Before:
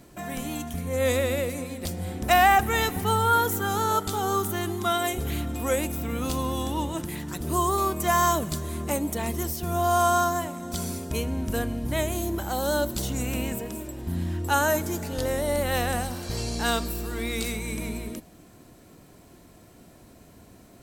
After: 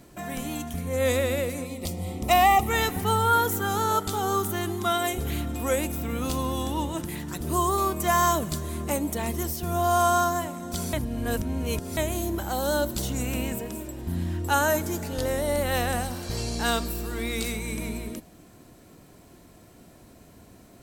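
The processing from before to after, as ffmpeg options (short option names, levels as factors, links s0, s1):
-filter_complex "[0:a]asettb=1/sr,asplit=3[s0][s1][s2];[s0]atrim=end=1.654[s3];[s1]atrim=start=1.65:end=2.71,asetpts=PTS-STARTPTS,afade=t=in:d=0.004:c=qsin,afade=t=out:st=1.056:d=0.004:c=qsin,asuperstop=centerf=1600:order=4:qfactor=2.8[s4];[s2]atrim=start=2.706[s5];[s3][s4]acrossfade=d=0.004:c1=hsin:c2=qsin[s6];[s6][s5]acrossfade=d=0.004:c1=qsin:c2=hsin,asplit=3[s7][s8][s9];[s7]atrim=end=10.932[s10];[s8]atrim=start=10.928:end=11.972,asetpts=PTS-STARTPTS,areverse[s11];[s9]atrim=start=11.968[s12];[s10][s11]acrossfade=d=0.004:c1=hsin:c2=hsin[s13];[s13][s12]acrossfade=d=0.004:c1=hsin:c2=hsin"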